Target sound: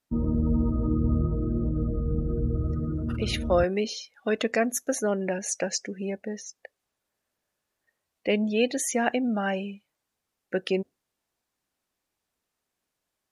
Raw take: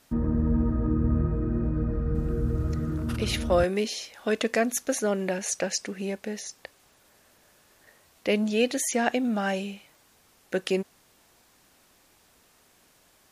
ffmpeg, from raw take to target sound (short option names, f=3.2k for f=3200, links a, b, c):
-af "afftdn=nr=22:nf=-38"